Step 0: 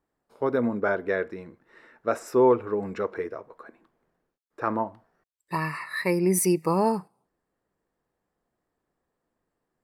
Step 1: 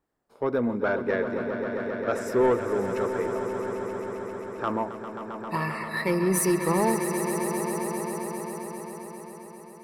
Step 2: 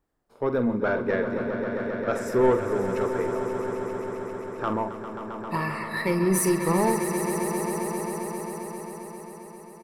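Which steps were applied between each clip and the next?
saturation -15.5 dBFS, distortion -17 dB; on a send: echo with a slow build-up 133 ms, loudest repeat 5, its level -11 dB
bass shelf 74 Hz +11.5 dB; doubling 47 ms -10.5 dB

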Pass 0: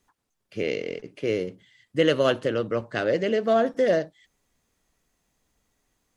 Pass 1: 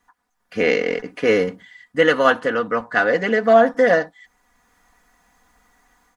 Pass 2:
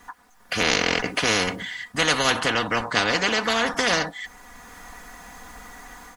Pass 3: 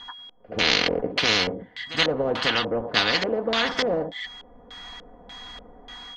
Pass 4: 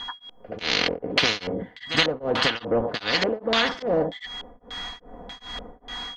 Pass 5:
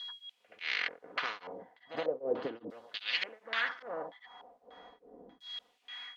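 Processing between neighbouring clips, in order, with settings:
high-order bell 1.2 kHz +10.5 dB; comb 4.1 ms, depth 68%; level rider gain up to 9 dB; trim -1 dB
spectrum-flattening compressor 4:1
whistle 3.3 kHz -42 dBFS; reverse echo 75 ms -15 dB; LFO low-pass square 1.7 Hz 520–4100 Hz; trim -2.5 dB
compression 6:1, threshold -24 dBFS, peak gain reduction 9 dB; tremolo of two beating tones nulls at 2.5 Hz; trim +7.5 dB
in parallel at -10 dB: word length cut 8-bit, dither triangular; on the sum: LFO band-pass saw down 0.37 Hz 300–4100 Hz; trim -7 dB

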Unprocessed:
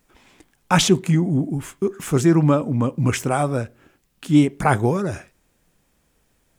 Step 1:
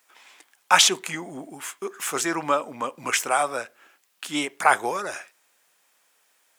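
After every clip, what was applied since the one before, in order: high-pass 860 Hz 12 dB/octave; trim +4 dB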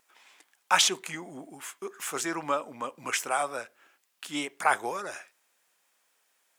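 vibrato 4.3 Hz 18 cents; trim -6 dB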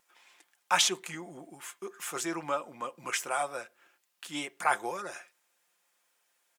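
comb 5.7 ms, depth 42%; trim -3.5 dB

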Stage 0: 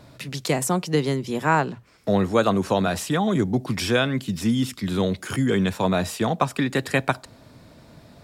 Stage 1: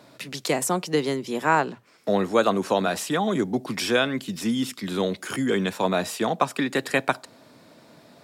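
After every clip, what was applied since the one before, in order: high-pass 230 Hz 12 dB/octave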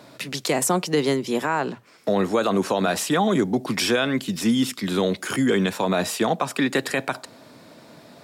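peak limiter -15.5 dBFS, peak gain reduction 9.5 dB; trim +4.5 dB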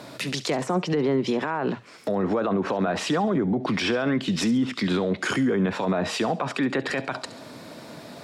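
low-pass that closes with the level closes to 1.5 kHz, closed at -17 dBFS; peak limiter -21.5 dBFS, peak gain reduction 10.5 dB; feedback echo behind a high-pass 69 ms, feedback 40%, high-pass 2.5 kHz, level -14 dB; trim +5.5 dB

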